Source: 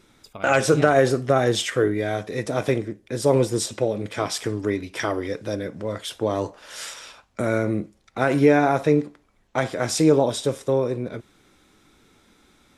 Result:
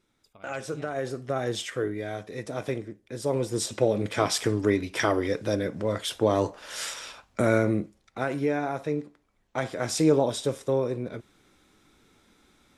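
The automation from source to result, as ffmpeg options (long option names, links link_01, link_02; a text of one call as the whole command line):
ffmpeg -i in.wav -af "volume=7.5dB,afade=type=in:start_time=0.89:duration=0.63:silence=0.446684,afade=type=in:start_time=3.41:duration=0.54:silence=0.334965,afade=type=out:start_time=7.46:duration=0.91:silence=0.266073,afade=type=in:start_time=8.96:duration=1.08:silence=0.473151" out.wav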